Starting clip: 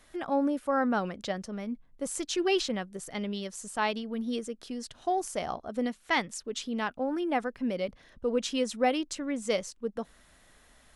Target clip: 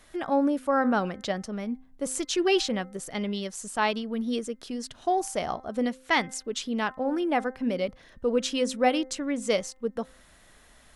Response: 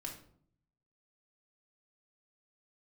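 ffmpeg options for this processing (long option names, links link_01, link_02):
-af "bandreject=frequency=259.8:width_type=h:width=4,bandreject=frequency=519.6:width_type=h:width=4,bandreject=frequency=779.4:width_type=h:width=4,bandreject=frequency=1039.2:width_type=h:width=4,bandreject=frequency=1299:width_type=h:width=4,bandreject=frequency=1558.8:width_type=h:width=4,bandreject=frequency=1818.6:width_type=h:width=4,bandreject=frequency=2078.4:width_type=h:width=4,volume=3.5dB"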